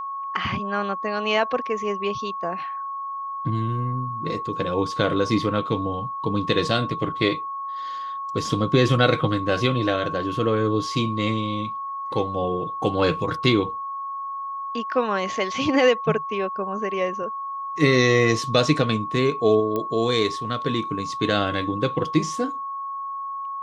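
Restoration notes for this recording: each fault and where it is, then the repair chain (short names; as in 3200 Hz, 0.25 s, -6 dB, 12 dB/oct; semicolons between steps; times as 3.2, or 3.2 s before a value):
tone 1100 Hz -28 dBFS
19.76 pop -14 dBFS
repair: de-click; notch 1100 Hz, Q 30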